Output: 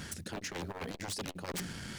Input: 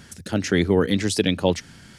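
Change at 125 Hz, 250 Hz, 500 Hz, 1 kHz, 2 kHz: -17.5, -21.0, -21.5, -11.5, -14.0 dB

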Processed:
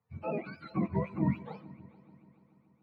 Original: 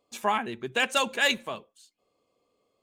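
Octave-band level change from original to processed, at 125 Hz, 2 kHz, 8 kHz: +14.0 dB, -22.0 dB, under -40 dB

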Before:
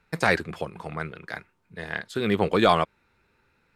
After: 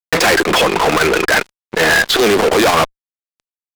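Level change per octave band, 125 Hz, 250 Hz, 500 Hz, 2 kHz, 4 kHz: +5.5, +9.5, +12.5, +15.5, +17.5 dB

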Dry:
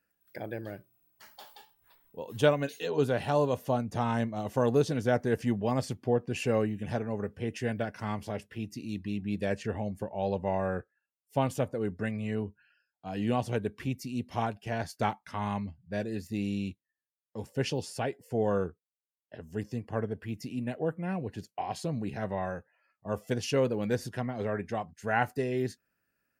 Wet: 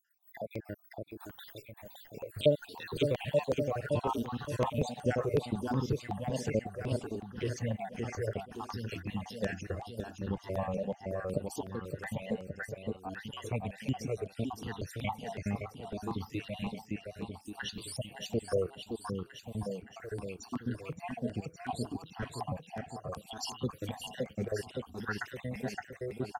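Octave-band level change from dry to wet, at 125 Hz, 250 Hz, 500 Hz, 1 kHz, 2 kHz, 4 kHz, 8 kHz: -3.0, -5.0, -4.5, -6.0, -4.5, -0.5, -1.0 dB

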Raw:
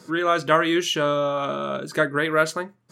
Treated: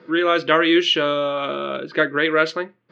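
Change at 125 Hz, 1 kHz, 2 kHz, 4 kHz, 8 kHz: -4.0, +0.5, +4.0, +7.0, -8.0 dB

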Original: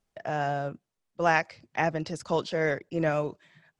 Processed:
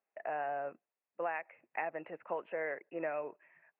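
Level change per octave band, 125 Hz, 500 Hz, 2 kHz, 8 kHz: -27.5 dB, -9.5 dB, -11.0 dB, under -30 dB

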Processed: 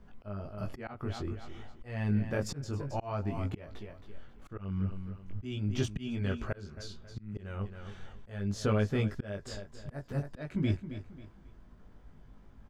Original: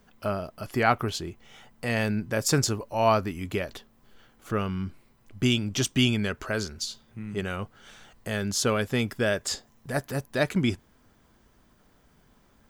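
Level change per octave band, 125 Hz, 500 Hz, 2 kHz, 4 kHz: -3.0, -10.0, -14.0, -16.0 dB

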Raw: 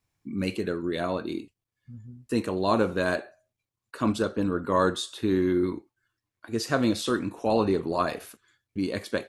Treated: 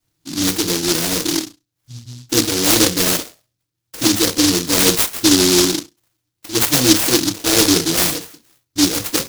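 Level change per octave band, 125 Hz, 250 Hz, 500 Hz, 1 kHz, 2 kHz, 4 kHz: +7.5, +9.5, +5.0, +3.0, +10.5, +21.0 dB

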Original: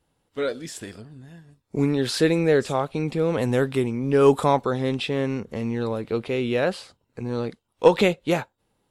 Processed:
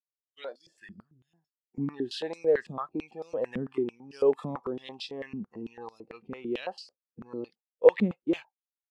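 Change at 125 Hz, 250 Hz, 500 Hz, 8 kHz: -15.0 dB, -9.5 dB, -6.5 dB, under -15 dB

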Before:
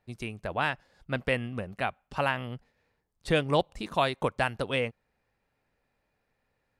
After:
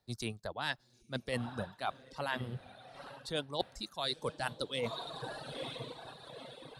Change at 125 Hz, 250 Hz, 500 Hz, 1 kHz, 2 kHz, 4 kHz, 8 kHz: -8.0, -8.0, -9.0, -9.0, -9.0, -1.5, +0.5 dB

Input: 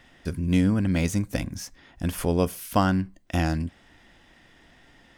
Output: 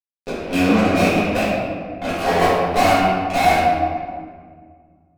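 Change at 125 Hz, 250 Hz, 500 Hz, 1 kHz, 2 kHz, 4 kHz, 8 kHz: -1.0, +4.5, +12.0, +15.5, +13.5, +11.5, +4.0 dB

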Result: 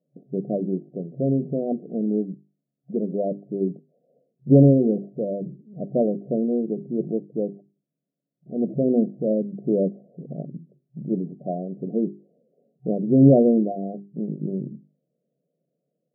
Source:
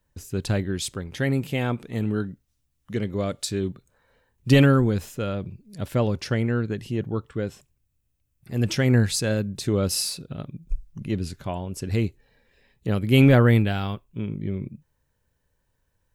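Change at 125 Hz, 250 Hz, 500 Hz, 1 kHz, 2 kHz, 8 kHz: -3.5 dB, +3.0 dB, +3.5 dB, -3.5 dB, under -40 dB, under -40 dB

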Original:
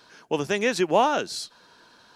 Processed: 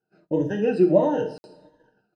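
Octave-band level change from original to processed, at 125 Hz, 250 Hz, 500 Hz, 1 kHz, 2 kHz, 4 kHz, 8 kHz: +7.0 dB, +6.5 dB, +3.5 dB, -8.0 dB, -10.0 dB, under -15 dB, under -20 dB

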